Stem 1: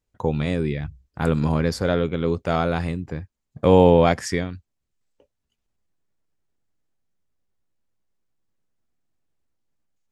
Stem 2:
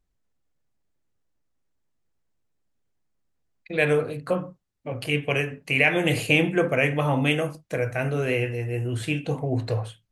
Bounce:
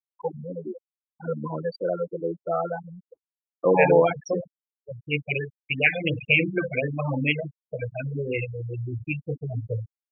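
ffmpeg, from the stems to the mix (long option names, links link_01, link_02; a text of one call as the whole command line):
ffmpeg -i stem1.wav -i stem2.wav -filter_complex "[0:a]highpass=310,aecho=1:1:5.9:0.45,volume=-2dB[link_01];[1:a]adynamicequalizer=threshold=0.0158:dfrequency=2200:dqfactor=1.2:tfrequency=2200:tqfactor=1.2:attack=5:release=100:ratio=0.375:range=2.5:mode=boostabove:tftype=bell,volume=-2.5dB[link_02];[link_01][link_02]amix=inputs=2:normalize=0,agate=range=-6dB:threshold=-39dB:ratio=16:detection=peak,afftfilt=real='re*gte(hypot(re,im),0.141)':imag='im*gte(hypot(re,im),0.141)':win_size=1024:overlap=0.75,afftfilt=real='re*(1-between(b*sr/1024,290*pow(2600/290,0.5+0.5*sin(2*PI*2.8*pts/sr))/1.41,290*pow(2600/290,0.5+0.5*sin(2*PI*2.8*pts/sr))*1.41))':imag='im*(1-between(b*sr/1024,290*pow(2600/290,0.5+0.5*sin(2*PI*2.8*pts/sr))/1.41,290*pow(2600/290,0.5+0.5*sin(2*PI*2.8*pts/sr))*1.41))':win_size=1024:overlap=0.75" out.wav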